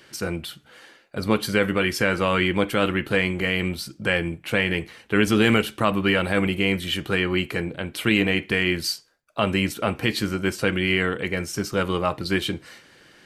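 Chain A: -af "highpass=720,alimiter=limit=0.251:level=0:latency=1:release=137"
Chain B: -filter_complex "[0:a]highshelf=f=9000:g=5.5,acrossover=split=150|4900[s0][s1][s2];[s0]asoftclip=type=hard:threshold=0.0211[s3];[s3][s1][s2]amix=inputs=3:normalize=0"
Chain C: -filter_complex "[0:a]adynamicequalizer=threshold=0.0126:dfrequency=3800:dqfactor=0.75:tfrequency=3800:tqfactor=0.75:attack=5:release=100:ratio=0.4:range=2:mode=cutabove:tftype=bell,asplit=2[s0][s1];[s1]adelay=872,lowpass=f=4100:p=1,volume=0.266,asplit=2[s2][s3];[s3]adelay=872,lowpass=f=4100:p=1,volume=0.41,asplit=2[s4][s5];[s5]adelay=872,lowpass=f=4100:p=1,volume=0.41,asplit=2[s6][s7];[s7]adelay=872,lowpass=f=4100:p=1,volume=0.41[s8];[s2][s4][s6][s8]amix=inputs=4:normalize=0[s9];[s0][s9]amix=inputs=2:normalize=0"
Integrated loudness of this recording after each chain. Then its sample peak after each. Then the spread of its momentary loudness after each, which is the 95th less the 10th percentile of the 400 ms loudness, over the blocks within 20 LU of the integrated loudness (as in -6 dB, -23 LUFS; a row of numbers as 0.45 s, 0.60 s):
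-27.5 LUFS, -23.5 LUFS, -23.5 LUFS; -12.0 dBFS, -5.5 dBFS, -6.5 dBFS; 8 LU, 8 LU, 9 LU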